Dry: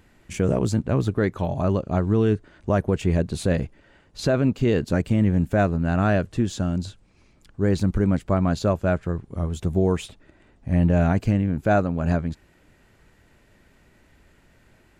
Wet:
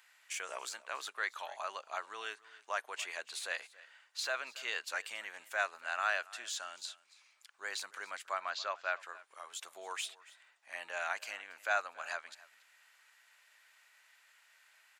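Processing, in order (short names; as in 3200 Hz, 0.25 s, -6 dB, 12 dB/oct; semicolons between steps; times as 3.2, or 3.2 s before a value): Bessel high-pass 1500 Hz, order 4; de-esser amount 80%; 8.4–9 LPF 5500 Hz 24 dB/oct; echo 0.28 s -20.5 dB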